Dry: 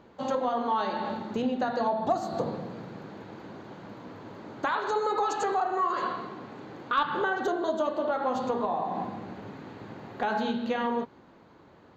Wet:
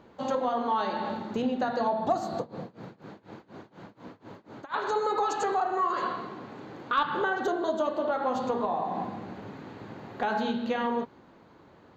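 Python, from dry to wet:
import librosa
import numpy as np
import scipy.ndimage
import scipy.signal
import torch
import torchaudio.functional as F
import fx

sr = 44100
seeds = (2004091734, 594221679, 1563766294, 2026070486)

y = fx.tremolo(x, sr, hz=4.1, depth=0.94, at=(2.36, 4.74))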